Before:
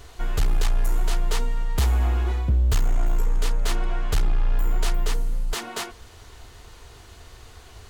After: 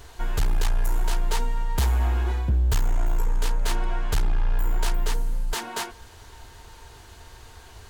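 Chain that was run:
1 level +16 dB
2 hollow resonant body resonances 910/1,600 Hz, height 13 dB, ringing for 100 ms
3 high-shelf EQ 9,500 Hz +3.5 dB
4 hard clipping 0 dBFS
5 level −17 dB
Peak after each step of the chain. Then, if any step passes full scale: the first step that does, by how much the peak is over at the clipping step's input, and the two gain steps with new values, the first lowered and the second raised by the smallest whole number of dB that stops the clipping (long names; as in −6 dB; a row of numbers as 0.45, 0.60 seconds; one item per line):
+2.0, +4.0, +4.0, 0.0, −17.0 dBFS
step 1, 4.0 dB
step 1 +12 dB, step 5 −13 dB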